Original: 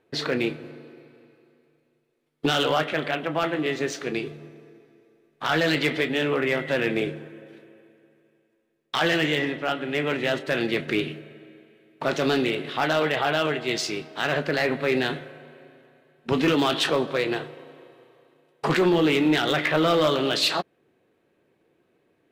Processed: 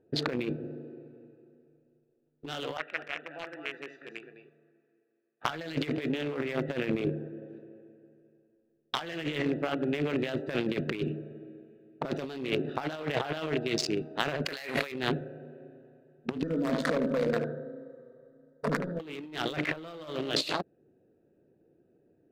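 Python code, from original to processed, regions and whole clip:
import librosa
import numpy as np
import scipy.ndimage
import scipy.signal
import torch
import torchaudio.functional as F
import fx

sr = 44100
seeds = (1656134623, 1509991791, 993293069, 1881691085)

y = fx.chain(x, sr, fx.bandpass_q(hz=2000.0, q=2.0),
    fx.echo_single(ms=213, db=-6.0), at=(2.77, 5.45))
y = fx.chain(y, sr, fx.tilt_eq(slope=4.0),
    fx.env_flatten(amount_pct=70), at=(14.45, 14.92))
y = fx.chain(y, sr, fx.over_compress(threshold_db=-26.0, ratio=-1.0),
    fx.fixed_phaser(hz=540.0, stages=8),
    fx.echo_filtered(ms=74, feedback_pct=51, hz=3300.0, wet_db=-5.0), at=(16.43, 19.0))
y = fx.wiener(y, sr, points=41)
y = fx.over_compress(y, sr, threshold_db=-29.0, ratio=-0.5)
y = y * 10.0 ** (-1.5 / 20.0)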